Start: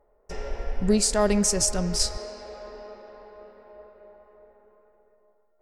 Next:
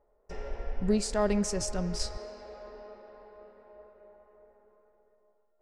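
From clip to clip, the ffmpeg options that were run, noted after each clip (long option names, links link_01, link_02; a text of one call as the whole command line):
ffmpeg -i in.wav -af "aemphasis=mode=reproduction:type=50kf,volume=-5dB" out.wav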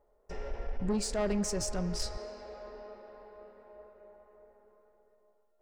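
ffmpeg -i in.wav -af "asoftclip=type=tanh:threshold=-25dB" out.wav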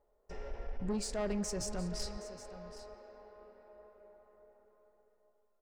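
ffmpeg -i in.wav -af "aecho=1:1:770:0.188,volume=-4.5dB" out.wav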